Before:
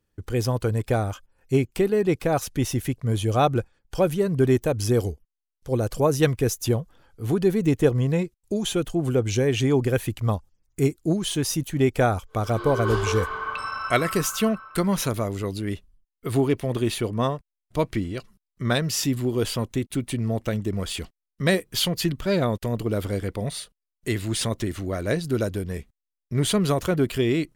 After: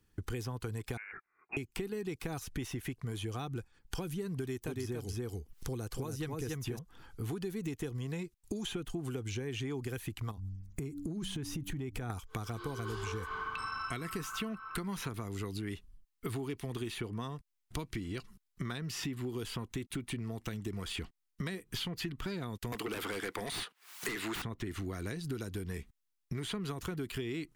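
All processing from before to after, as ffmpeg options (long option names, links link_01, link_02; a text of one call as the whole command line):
ffmpeg -i in.wav -filter_complex "[0:a]asettb=1/sr,asplit=3[link_01][link_02][link_03];[link_01]atrim=end=0.974[link_04];[link_02]atrim=start=0.97:end=1.57,asetpts=PTS-STARTPTS,afade=type=in:duration=0.004:curve=qsin,afade=type=out:start_time=0.596:duration=0.004:curve=qsin,highpass=1100,lowpass=frequency=2500:width_type=q:width=0.5098,lowpass=frequency=2500:width_type=q:width=0.6013,lowpass=frequency=2500:width_type=q:width=0.9,lowpass=frequency=2500:width_type=q:width=2.563,afreqshift=-2900[link_05];[link_03]atrim=start=1.566[link_06];[link_04][link_05]acrossfade=duration=0.004:curve1=hsin:curve2=qsin[link_07];[link_07][link_06]acrossfade=duration=0.004:curve1=qsin:curve2=hsin,asettb=1/sr,asplit=3[link_08][link_09][link_10];[link_08]atrim=end=4.374[link_11];[link_09]atrim=start=4.37:end=6.79,asetpts=PTS-STARTPTS,afade=type=in:duration=0.004:curve=qsin,afade=type=out:start_time=2.416:duration=0.004:curve=qsin,aecho=1:1:285:0.708,atrim=end_sample=106722,acompressor=mode=upward:threshold=-34dB:ratio=2.5:attack=3.2:release=140:knee=2.83:detection=peak[link_12];[link_10]atrim=start=6.786[link_13];[link_11][link_12]acrossfade=duration=0.004:curve1=hsin:curve2=qsin[link_14];[link_14][link_13]acrossfade=duration=0.004:curve1=qsin:curve2=hsin,asettb=1/sr,asplit=3[link_15][link_16][link_17];[link_15]atrim=end=10.314[link_18];[link_16]atrim=start=10.31:end=12.1,asetpts=PTS-STARTPTS,afade=type=in:duration=0.004:curve=qsin,afade=type=out:start_time=1.786:duration=0.004:curve=qsin,lowshelf=frequency=290:gain=9.5,bandreject=frequency=96.01:width_type=h:width=4,bandreject=frequency=192.02:width_type=h:width=4,bandreject=frequency=288.03:width_type=h:width=4,acompressor=threshold=-28dB:ratio=5:attack=3.2:release=140:knee=1:detection=peak[link_19];[link_17]atrim=start=12.096[link_20];[link_18][link_19]acrossfade=duration=0.004:curve1=hsin:curve2=qsin[link_21];[link_21][link_20]acrossfade=duration=0.004:curve1=qsin:curve2=hsin,asettb=1/sr,asplit=3[link_22][link_23][link_24];[link_22]atrim=end=22.724[link_25];[link_23]atrim=start=22.72:end=24.42,asetpts=PTS-STARTPTS,afade=type=in:duration=0.004:curve=qsin,afade=type=out:start_time=1.696:duration=0.004:curve=qsin,highpass=710,acompressor=mode=upward:threshold=-49dB:ratio=2.5:attack=3.2:release=140:knee=2.83:detection=peak,aeval=exprs='0.178*sin(PI/2*6.31*val(0)/0.178)':channel_layout=same[link_26];[link_24]atrim=start=24.416[link_27];[link_25][link_26]acrossfade=duration=0.004:curve1=hsin:curve2=qsin[link_28];[link_28][link_27]acrossfade=duration=0.004:curve1=qsin:curve2=hsin,acrossover=split=370|3100[link_29][link_30][link_31];[link_29]acompressor=threshold=-32dB:ratio=4[link_32];[link_30]acompressor=threshold=-32dB:ratio=4[link_33];[link_31]acompressor=threshold=-44dB:ratio=4[link_34];[link_32][link_33][link_34]amix=inputs=3:normalize=0,equalizer=frequency=580:width_type=o:width=0.4:gain=-14.5,acompressor=threshold=-41dB:ratio=4,volume=4dB" out.wav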